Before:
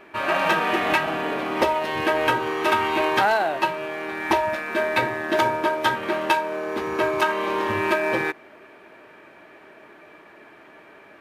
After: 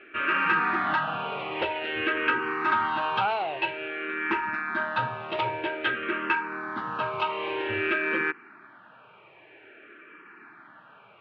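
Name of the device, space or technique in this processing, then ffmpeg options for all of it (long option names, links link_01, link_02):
barber-pole phaser into a guitar amplifier: -filter_complex "[0:a]asplit=2[link_01][link_02];[link_02]afreqshift=-0.51[link_03];[link_01][link_03]amix=inputs=2:normalize=1,asoftclip=type=tanh:threshold=-17dB,highpass=95,equalizer=frequency=120:width_type=q:width=4:gain=5,equalizer=frequency=620:width_type=q:width=4:gain=-6,equalizer=frequency=1400:width_type=q:width=4:gain=10,equalizer=frequency=2700:width_type=q:width=4:gain=7,lowpass=frequency=3600:width=0.5412,lowpass=frequency=3600:width=1.3066,volume=-2.5dB"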